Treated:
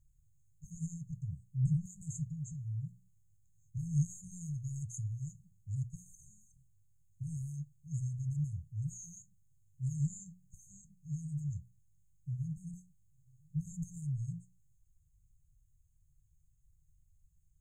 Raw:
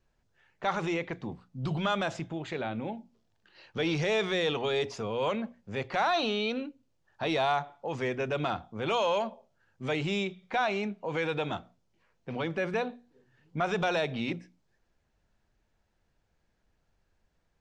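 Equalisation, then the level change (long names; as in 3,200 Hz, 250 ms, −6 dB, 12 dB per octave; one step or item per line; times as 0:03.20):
linear-phase brick-wall band-stop 160–6,300 Hz
+6.5 dB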